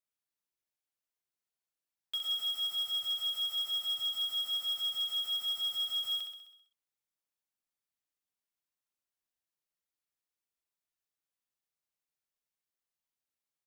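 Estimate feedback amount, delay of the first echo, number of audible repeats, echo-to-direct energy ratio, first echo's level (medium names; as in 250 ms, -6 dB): 58%, 65 ms, 7, -3.0 dB, -5.0 dB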